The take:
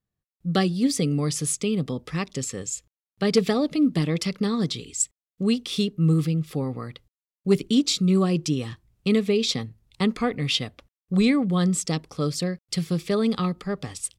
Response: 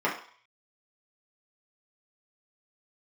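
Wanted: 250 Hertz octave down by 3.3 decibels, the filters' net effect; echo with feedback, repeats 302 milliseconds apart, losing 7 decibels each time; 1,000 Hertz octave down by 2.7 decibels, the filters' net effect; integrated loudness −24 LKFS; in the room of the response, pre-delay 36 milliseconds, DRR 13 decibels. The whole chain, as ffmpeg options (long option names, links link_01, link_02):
-filter_complex "[0:a]equalizer=frequency=250:width_type=o:gain=-4.5,equalizer=frequency=1000:width_type=o:gain=-3.5,aecho=1:1:302|604|906|1208|1510:0.447|0.201|0.0905|0.0407|0.0183,asplit=2[link_01][link_02];[1:a]atrim=start_sample=2205,adelay=36[link_03];[link_02][link_03]afir=irnorm=-1:irlink=0,volume=-26dB[link_04];[link_01][link_04]amix=inputs=2:normalize=0,volume=2dB"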